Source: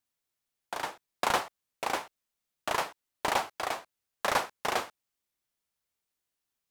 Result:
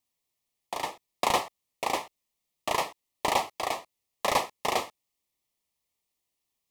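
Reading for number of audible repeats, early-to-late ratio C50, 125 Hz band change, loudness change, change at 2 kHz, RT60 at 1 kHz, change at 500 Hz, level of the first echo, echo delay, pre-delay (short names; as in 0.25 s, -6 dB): none, none, +3.0 dB, +2.0 dB, -0.5 dB, none, +3.0 dB, none, none, none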